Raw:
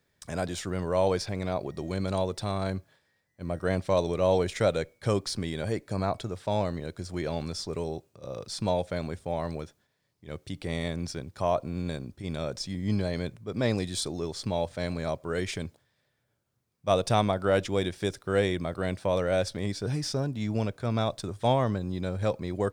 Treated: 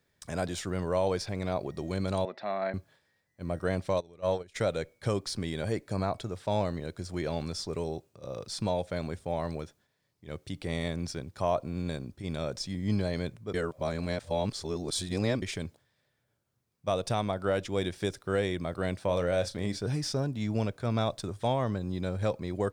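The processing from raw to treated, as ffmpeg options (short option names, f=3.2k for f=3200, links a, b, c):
-filter_complex "[0:a]asettb=1/sr,asplit=3[a][b][c];[a]atrim=end=2.254[d];[b]atrim=start=2.25:end=2.74,asetpts=PTS-STARTPTS,afade=t=in:d=0.004:c=qsin,afade=t=out:st=0.486:d=0.004:c=qsin,highpass=f=230:w=0.5412,highpass=f=230:w=1.3066,equalizer=f=300:t=q:w=4:g=-8,equalizer=f=450:t=q:w=4:g=-9,equalizer=f=650:t=q:w=4:g=7,equalizer=f=980:t=q:w=4:g=-3,equalizer=f=1.9k:t=q:w=4:g=8,equalizer=f=3.2k:t=q:w=4:g=-9,lowpass=f=3.5k:w=0.5412,lowpass=f=3.5k:w=1.3066[e];[c]atrim=start=2.736[f];[d][e]acrossfade=d=0.004:c1=hsin:c2=qsin[g];[g][f]acrossfade=d=0.004:c1=qsin:c2=hsin,asplit=3[h][i][j];[h]afade=t=out:st=3.97:d=0.02[k];[i]agate=range=-21dB:threshold=-23dB:ratio=16:release=100:detection=peak,afade=t=in:st=3.97:d=0.02,afade=t=out:st=4.54:d=0.02[l];[j]afade=t=in:st=4.54:d=0.02[m];[k][l][m]amix=inputs=3:normalize=0,asettb=1/sr,asplit=3[n][o][p];[n]atrim=end=19.054[q];[o]atrim=start=19.05:end=19.79,asetpts=PTS-STARTPTS,afade=t=in:d=0.004:c=qsin,afade=t=out:st=0.736:d=0.004:c=qsin,asplit=2[r][s];[s]adelay=34,volume=-12dB[t];[r][t]amix=inputs=2:normalize=0,atrim=end_sample=32634[u];[p]atrim=start=19.786[v];[q][u]acrossfade=d=0.004:c1=hsin:c2=qsin[w];[w][v]acrossfade=d=0.004:c1=qsin:c2=hsin,asplit=3[x][y][z];[x]atrim=end=13.542[aa];[y]atrim=start=13.538:end=15.422,asetpts=PTS-STARTPTS,areverse[ab];[z]atrim=start=15.418[ac];[aa][ab]acrossfade=d=0.004:c1=hsin:c2=hsin[ad];[ad][ac]acrossfade=d=0.004:c1=hsin:c2=hsin,alimiter=limit=-16dB:level=0:latency=1:release=410,volume=-1dB"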